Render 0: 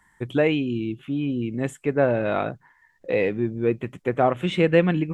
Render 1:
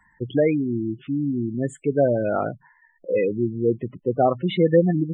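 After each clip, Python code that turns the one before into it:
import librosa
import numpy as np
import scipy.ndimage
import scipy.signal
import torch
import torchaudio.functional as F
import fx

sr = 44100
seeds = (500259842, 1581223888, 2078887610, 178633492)

y = fx.spec_gate(x, sr, threshold_db=-15, keep='strong')
y = y * librosa.db_to_amplitude(1.5)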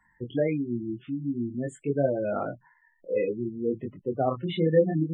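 y = fx.chorus_voices(x, sr, voices=2, hz=0.52, base_ms=23, depth_ms=2.6, mix_pct=40)
y = y * librosa.db_to_amplitude(-3.0)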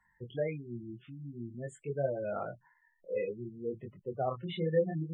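y = fx.peak_eq(x, sr, hz=280.0, db=-14.0, octaves=0.47)
y = y * librosa.db_to_amplitude(-6.0)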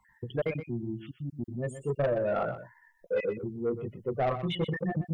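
y = fx.spec_dropout(x, sr, seeds[0], share_pct=22)
y = 10.0 ** (-30.5 / 20.0) * np.tanh(y / 10.0 ** (-30.5 / 20.0))
y = y + 10.0 ** (-11.5 / 20.0) * np.pad(y, (int(123 * sr / 1000.0), 0))[:len(y)]
y = y * librosa.db_to_amplitude(8.5)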